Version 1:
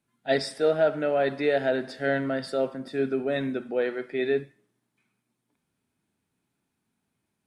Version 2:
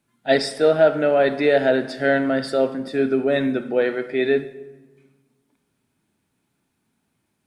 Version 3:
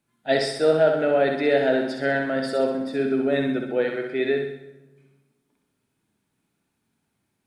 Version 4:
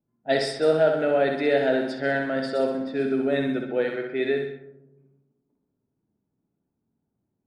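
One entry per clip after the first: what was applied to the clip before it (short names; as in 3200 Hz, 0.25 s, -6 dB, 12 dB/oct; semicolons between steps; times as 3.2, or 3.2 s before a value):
reverb RT60 1.3 s, pre-delay 3 ms, DRR 14 dB; gain +6.5 dB
flutter echo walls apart 11 m, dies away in 0.69 s; gain -4 dB
low-pass opened by the level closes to 600 Hz, open at -19.5 dBFS; gain -1.5 dB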